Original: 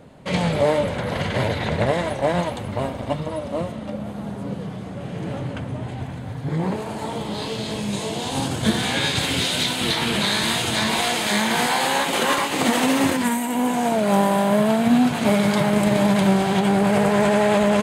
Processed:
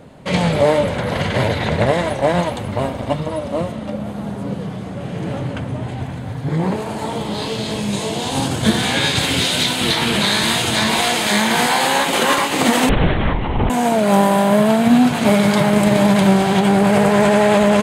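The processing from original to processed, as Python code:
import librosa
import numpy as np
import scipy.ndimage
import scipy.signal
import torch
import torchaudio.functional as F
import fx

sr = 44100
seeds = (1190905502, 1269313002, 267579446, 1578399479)

y = fx.lpc_vocoder(x, sr, seeds[0], excitation='whisper', order=8, at=(12.89, 13.7))
y = y * librosa.db_to_amplitude(4.5)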